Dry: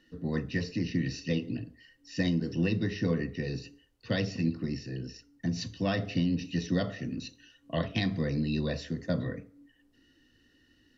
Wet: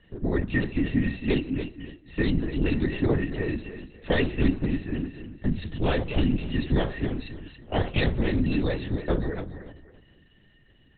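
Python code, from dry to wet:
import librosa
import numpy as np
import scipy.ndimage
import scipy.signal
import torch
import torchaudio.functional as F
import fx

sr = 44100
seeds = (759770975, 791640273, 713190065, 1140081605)

p1 = fx.rider(x, sr, range_db=3, speed_s=2.0)
p2 = p1 + fx.echo_feedback(p1, sr, ms=282, feedback_pct=29, wet_db=-10.5, dry=0)
p3 = fx.lpc_vocoder(p2, sr, seeds[0], excitation='whisper', order=8)
y = F.gain(torch.from_numpy(p3), 5.0).numpy()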